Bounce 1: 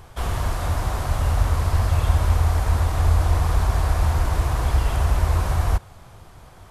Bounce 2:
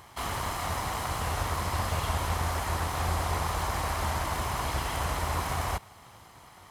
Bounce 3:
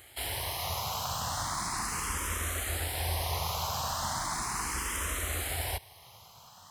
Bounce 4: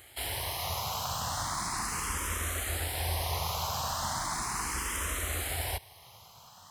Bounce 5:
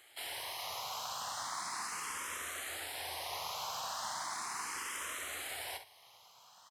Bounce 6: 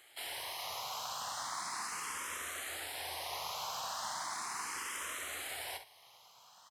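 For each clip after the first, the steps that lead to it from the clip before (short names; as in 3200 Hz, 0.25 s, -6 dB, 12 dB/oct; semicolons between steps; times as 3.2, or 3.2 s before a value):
minimum comb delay 0.98 ms; HPF 330 Hz 6 dB/oct
high shelf 2600 Hz +11.5 dB; endless phaser +0.37 Hz; gain -3 dB
nothing audible
weighting filter A; on a send: early reflections 50 ms -11.5 dB, 68 ms -13.5 dB; on the sum: gain -6.5 dB
notches 50/100 Hz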